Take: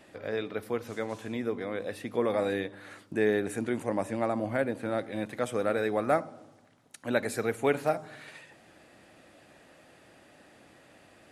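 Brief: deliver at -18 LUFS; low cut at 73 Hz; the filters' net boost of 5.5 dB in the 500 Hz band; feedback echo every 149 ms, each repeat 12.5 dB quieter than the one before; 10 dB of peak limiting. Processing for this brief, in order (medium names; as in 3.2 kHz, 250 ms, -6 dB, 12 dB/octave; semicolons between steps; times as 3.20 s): high-pass 73 Hz; peaking EQ 500 Hz +6.5 dB; peak limiter -19.5 dBFS; feedback delay 149 ms, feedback 24%, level -12.5 dB; trim +12.5 dB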